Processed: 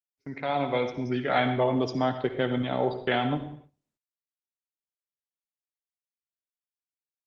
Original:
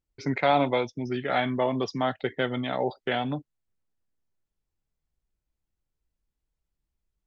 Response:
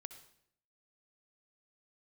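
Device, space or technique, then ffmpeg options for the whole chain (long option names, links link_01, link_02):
speakerphone in a meeting room: -filter_complex "[0:a]agate=range=-33dB:threshold=-37dB:ratio=3:detection=peak,asplit=3[link_01][link_02][link_03];[link_01]afade=type=out:start_time=1.5:duration=0.02[link_04];[link_02]equalizer=frequency=1900:width=0.6:gain=-5,afade=type=in:start_time=1.5:duration=0.02,afade=type=out:start_time=2.86:duration=0.02[link_05];[link_03]afade=type=in:start_time=2.86:duration=0.02[link_06];[link_04][link_05][link_06]amix=inputs=3:normalize=0[link_07];[1:a]atrim=start_sample=2205[link_08];[link_07][link_08]afir=irnorm=-1:irlink=0,asplit=2[link_09][link_10];[link_10]adelay=90,highpass=300,lowpass=3400,asoftclip=type=hard:threshold=-25dB,volume=-25dB[link_11];[link_09][link_11]amix=inputs=2:normalize=0,dynaudnorm=framelen=200:gausssize=7:maxgain=14dB,agate=range=-18dB:threshold=-43dB:ratio=16:detection=peak,volume=-6dB" -ar 48000 -c:a libopus -b:a 24k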